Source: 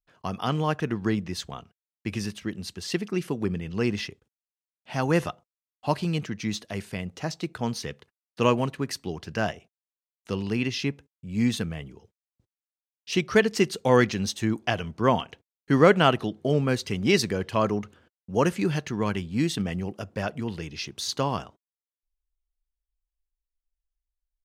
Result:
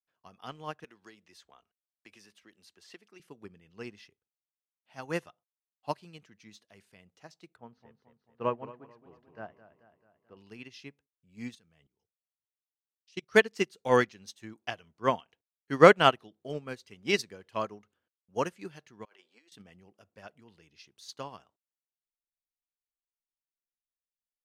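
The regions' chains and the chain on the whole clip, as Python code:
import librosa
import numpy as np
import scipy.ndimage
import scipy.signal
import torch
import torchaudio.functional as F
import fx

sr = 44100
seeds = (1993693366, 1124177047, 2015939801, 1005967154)

y = fx.chain(x, sr, fx.peak_eq(hz=130.0, db=-13.5, octaves=1.6),
    fx.band_squash(depth_pct=70), at=(0.84, 3.2))
y = fx.chain(y, sr, fx.lowpass(hz=1400.0, slope=12),
    fx.hum_notches(base_hz=50, count=5),
    fx.echo_warbled(ms=219, feedback_pct=57, rate_hz=2.8, cents=84, wet_db=-7.5), at=(7.56, 10.37))
y = fx.chain(y, sr, fx.lowpass(hz=8500.0, slope=12),
    fx.bass_treble(bass_db=2, treble_db=7),
    fx.level_steps(step_db=20), at=(11.55, 13.32))
y = fx.chain(y, sr, fx.highpass(hz=420.0, slope=24),
    fx.over_compress(threshold_db=-38.0, ratio=-0.5),
    fx.air_absorb(metres=56.0), at=(19.05, 19.52))
y = fx.low_shelf(y, sr, hz=310.0, db=-9.0)
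y = fx.upward_expand(y, sr, threshold_db=-33.0, expansion=2.5)
y = y * 10.0 ** (5.0 / 20.0)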